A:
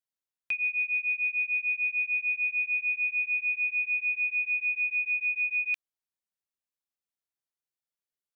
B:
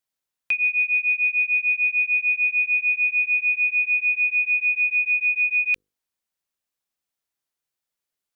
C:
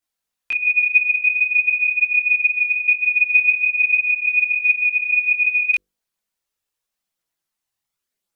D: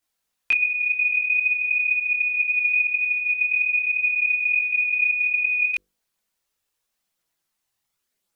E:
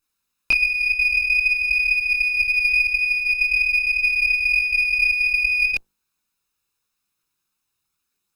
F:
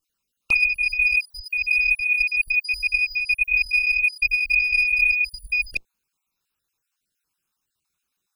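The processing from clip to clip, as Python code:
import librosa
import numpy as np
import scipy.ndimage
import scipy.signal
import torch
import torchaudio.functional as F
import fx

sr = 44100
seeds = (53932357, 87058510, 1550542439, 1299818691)

y1 = fx.hum_notches(x, sr, base_hz=50, count=10)
y1 = y1 * 10.0 ** (7.5 / 20.0)
y2 = fx.chorus_voices(y1, sr, voices=4, hz=0.43, base_ms=22, depth_ms=3.2, mix_pct=60)
y2 = y2 * 10.0 ** (6.5 / 20.0)
y3 = fx.over_compress(y2, sr, threshold_db=-22.0, ratio=-1.0)
y4 = fx.lower_of_two(y3, sr, delay_ms=0.78)
y4 = y4 * 10.0 ** (2.5 / 20.0)
y5 = fx.spec_dropout(y4, sr, seeds[0], share_pct=39)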